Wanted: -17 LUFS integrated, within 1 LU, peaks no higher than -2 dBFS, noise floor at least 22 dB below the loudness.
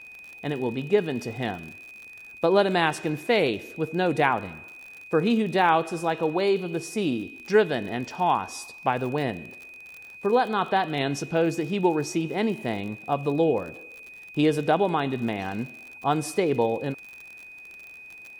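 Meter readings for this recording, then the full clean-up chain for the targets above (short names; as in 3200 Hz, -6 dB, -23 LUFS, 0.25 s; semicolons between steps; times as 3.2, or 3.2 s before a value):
ticks 56/s; steady tone 2500 Hz; tone level -42 dBFS; loudness -25.5 LUFS; peak -7.0 dBFS; loudness target -17.0 LUFS
-> de-click; notch 2500 Hz, Q 30; gain +8.5 dB; limiter -2 dBFS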